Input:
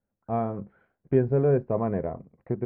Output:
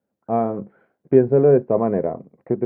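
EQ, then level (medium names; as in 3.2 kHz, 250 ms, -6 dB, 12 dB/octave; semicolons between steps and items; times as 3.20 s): high-pass 120 Hz 12 dB/octave; peaking EQ 410 Hz +9 dB 2.9 oct; peaking EQ 2.2 kHz +2 dB; 0.0 dB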